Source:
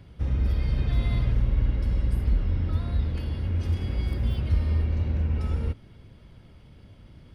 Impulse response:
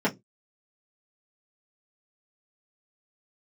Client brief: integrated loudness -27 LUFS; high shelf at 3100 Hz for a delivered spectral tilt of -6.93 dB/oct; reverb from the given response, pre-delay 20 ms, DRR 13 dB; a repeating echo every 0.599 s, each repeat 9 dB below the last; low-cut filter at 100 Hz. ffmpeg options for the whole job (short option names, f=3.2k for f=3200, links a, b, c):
-filter_complex "[0:a]highpass=100,highshelf=f=3.1k:g=4.5,aecho=1:1:599|1198|1797|2396:0.355|0.124|0.0435|0.0152,asplit=2[a][b];[1:a]atrim=start_sample=2205,adelay=20[c];[b][c]afir=irnorm=-1:irlink=0,volume=-25.5dB[d];[a][d]amix=inputs=2:normalize=0,volume=4.5dB"